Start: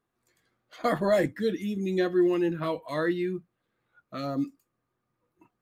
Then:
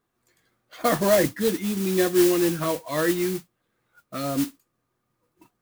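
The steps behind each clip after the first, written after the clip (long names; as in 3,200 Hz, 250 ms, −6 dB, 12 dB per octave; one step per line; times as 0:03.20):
noise that follows the level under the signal 11 dB
level +4 dB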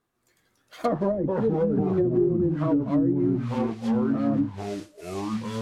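delay with pitch and tempo change per echo 216 ms, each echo −4 semitones, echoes 2
treble cut that deepens with the level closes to 340 Hz, closed at −15 dBFS
dynamic equaliser 1,800 Hz, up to −3 dB, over −40 dBFS, Q 0.75
level −1 dB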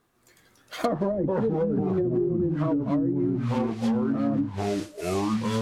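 downward compressor 6 to 1, threshold −31 dBFS, peak gain reduction 12.5 dB
level +8.5 dB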